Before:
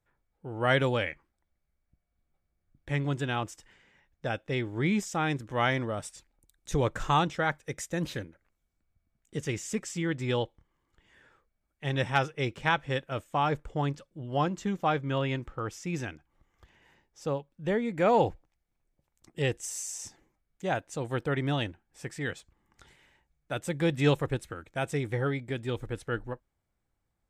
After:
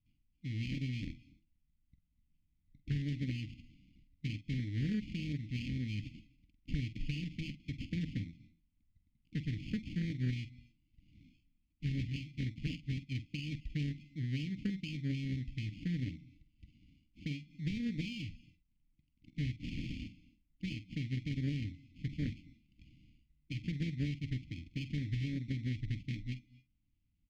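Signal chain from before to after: rattling part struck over -30 dBFS, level -23 dBFS; dynamic EQ 110 Hz, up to +3 dB, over -42 dBFS, Q 2.4; compressor 16:1, threshold -32 dBFS, peak gain reduction 15 dB; sample-and-hold 23×; brick-wall FIR band-stop 320–1900 Hz; air absorption 210 m; doubler 47 ms -12 dB; on a send at -22 dB: reverb, pre-delay 0.1 s; on the sum: Doppler distortion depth 0.29 ms; gain +2 dB

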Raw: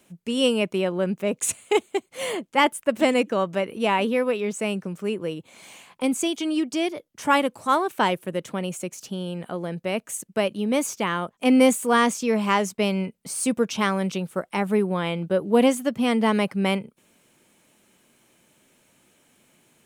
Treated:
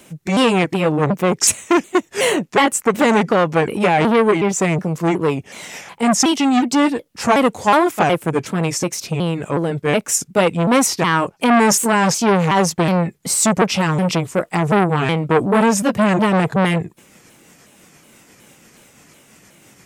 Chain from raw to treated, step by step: repeated pitch sweeps -4.5 st, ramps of 0.368 s; maximiser +14 dB; core saturation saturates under 920 Hz

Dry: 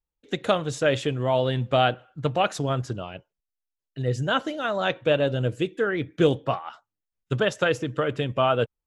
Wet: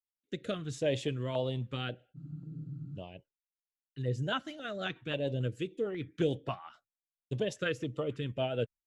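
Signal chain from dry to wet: gate with hold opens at -43 dBFS; rotary speaker horn 0.65 Hz, later 6.7 Hz, at 3.75; spectral freeze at 2.19, 0.78 s; stepped notch 3.7 Hz 460–1600 Hz; gain -6.5 dB

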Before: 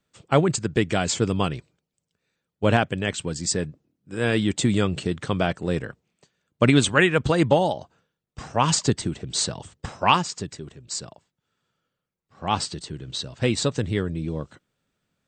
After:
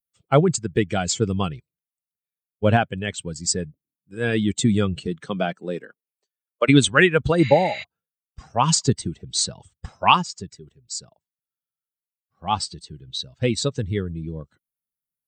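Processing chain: per-bin expansion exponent 1.5; 5.06–6.68 HPF 130 Hz -> 430 Hz 24 dB/oct; 7.44–7.81 spectral repair 1000–7400 Hz before; gain +4.5 dB

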